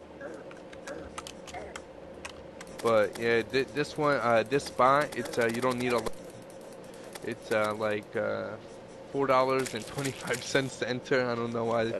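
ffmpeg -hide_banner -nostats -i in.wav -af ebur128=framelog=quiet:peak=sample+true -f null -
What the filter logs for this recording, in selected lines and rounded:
Integrated loudness:
  I:         -29.0 LUFS
  Threshold: -40.5 LUFS
Loudness range:
  LRA:         6.4 LU
  Threshold: -50.1 LUFS
  LRA low:   -33.8 LUFS
  LRA high:  -27.5 LUFS
Sample peak:
  Peak:       -9.7 dBFS
True peak:
  Peak:       -9.7 dBFS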